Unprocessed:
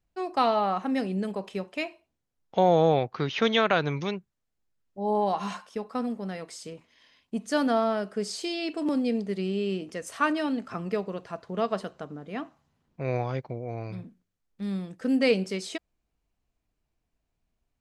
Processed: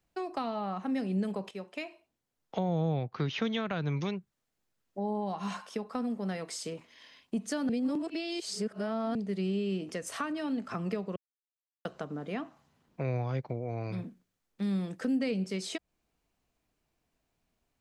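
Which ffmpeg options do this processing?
-filter_complex "[0:a]asplit=6[a][b][c][d][e][f];[a]atrim=end=1.51,asetpts=PTS-STARTPTS,afade=t=out:st=1.506:d=0.004:c=hsin:silence=0.237137[g];[b]atrim=start=1.51:end=7.692,asetpts=PTS-STARTPTS,afade=t=in:d=1.24:silence=0.237137[h];[c]atrim=start=7.688:end=9.152,asetpts=PTS-STARTPTS,areverse[i];[d]atrim=start=9.148:end=11.16,asetpts=PTS-STARTPTS,afade=t=out:st=2.008:d=0.004:c=hsin[j];[e]atrim=start=11.16:end=11.85,asetpts=PTS-STARTPTS,volume=0[k];[f]atrim=start=11.85,asetpts=PTS-STARTPTS,afade=t=in:d=0.004:c=hsin[l];[g][h]concat=n=2:v=0:a=1[m];[m][i]acrossfade=d=0.004:c1=hsin:c2=hsin[n];[j][k][l]concat=n=3:v=0:a=1[o];[n][o]acrossfade=d=0.004:c1=hsin:c2=hsin,lowshelf=f=93:g=-11.5,acrossover=split=190[p][q];[q]acompressor=threshold=-40dB:ratio=5[r];[p][r]amix=inputs=2:normalize=0,volume=5dB"

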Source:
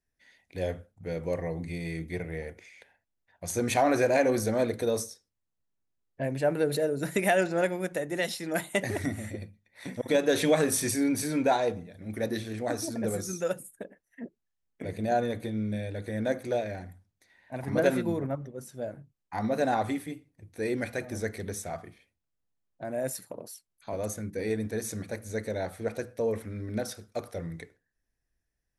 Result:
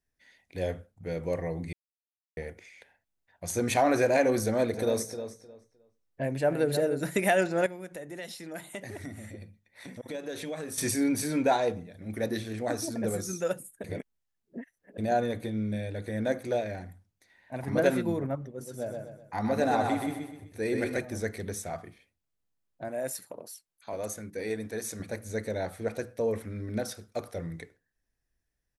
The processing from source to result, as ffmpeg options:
-filter_complex "[0:a]asplit=3[a][b][c];[a]afade=t=out:st=4.73:d=0.02[d];[b]asplit=2[e][f];[f]adelay=308,lowpass=f=3.2k:p=1,volume=-9.5dB,asplit=2[g][h];[h]adelay=308,lowpass=f=3.2k:p=1,volume=0.21,asplit=2[i][j];[j]adelay=308,lowpass=f=3.2k:p=1,volume=0.21[k];[e][g][i][k]amix=inputs=4:normalize=0,afade=t=in:st=4.73:d=0.02,afade=t=out:st=7.01:d=0.02[l];[c]afade=t=in:st=7.01:d=0.02[m];[d][l][m]amix=inputs=3:normalize=0,asettb=1/sr,asplit=3[n][o][p];[n]atrim=end=7.664[q];[o]atrim=start=7.66:end=10.78,asetpts=PTS-STARTPTS,afade=t=in:d=0.004:c=qsin,afade=t=out:st=3.116:d=0.004:c=qsin,acompressor=threshold=-44dB:ratio=2:attack=3.2:release=140:knee=1:detection=peak[r];[p]atrim=start=10.776[s];[q][r]acrossfade=d=0.004:c1=hsin:c2=qsin[t];[t][s]acrossfade=d=0.004:c1=qsin:c2=hsin,asettb=1/sr,asplit=3[u][v][w];[u]atrim=end=18.484[x];[v]atrim=start=18.48:end=21.01,asetpts=PTS-STARTPTS,afade=t=in:d=0.004:c=qsin,afade=t=out:st=2.526:d=0.004:c=qsin,aecho=1:1:126|252|378|504|630:0.631|0.252|0.101|0.0404|0.0162,atrim=end_sample=111573[y];[w]atrim=start=21.006[z];[x][y]acrossfade=d=0.004:c1=hsin:c2=qsin[aa];[aa][z]acrossfade=d=0.004:c1=qsin:c2=hsin,asettb=1/sr,asplit=3[ab][ac][ad];[ab]atrim=end=22.884[ae];[ac]atrim=start=22.88:end=25,asetpts=PTS-STARTPTS,afade=t=in:d=0.004:c=qsin,afade=t=out:st=2.116:d=0.004:c=qsin,lowshelf=f=260:g=-9[af];[ad]atrim=start=24.996[ag];[ae][af]acrossfade=d=0.004:c1=hsin:c2=qsin[ah];[ah][ag]acrossfade=d=0.004:c1=qsin:c2=hsin,asplit=5[ai][aj][ak][al][am];[ai]atrim=end=1.73,asetpts=PTS-STARTPTS,afade=t=out:st=1.726:d=0.004:c=hsin[an];[aj]atrim=start=1.73:end=2.37,asetpts=PTS-STARTPTS,volume=0[ao];[ak]atrim=start=2.37:end=13.842,asetpts=PTS-STARTPTS,afade=t=in:d=0.004:c=hsin[ap];[al]atrim=start=13.838:end=14.982,asetpts=PTS-STARTPTS,areverse[aq];[am]atrim=start=14.978[ar];[an][ao][ap]concat=n=3:v=0:a=1[as];[as][aq]acrossfade=d=0.004:c1=hsin:c2=hsin[at];[at][ar]acrossfade=d=0.004:c1=hsin:c2=hsin"

